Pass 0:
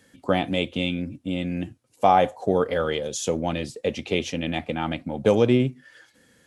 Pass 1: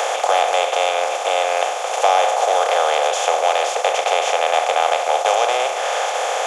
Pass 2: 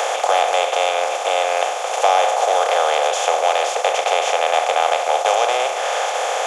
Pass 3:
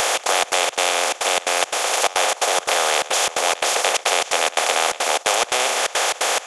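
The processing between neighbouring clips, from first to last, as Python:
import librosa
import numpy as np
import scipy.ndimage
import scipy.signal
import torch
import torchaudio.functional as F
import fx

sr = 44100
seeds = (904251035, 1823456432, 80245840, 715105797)

y1 = fx.bin_compress(x, sr, power=0.2)
y1 = scipy.signal.sosfilt(scipy.signal.butter(6, 560.0, 'highpass', fs=sr, output='sos'), y1)
y1 = fx.band_squash(y1, sr, depth_pct=40)
y2 = y1
y3 = fx.step_gate(y2, sr, bpm=174, pattern='xx.xx.xx.xx', floor_db=-24.0, edge_ms=4.5)
y3 = fx.spectral_comp(y3, sr, ratio=2.0)
y3 = F.gain(torch.from_numpy(y3), 1.0).numpy()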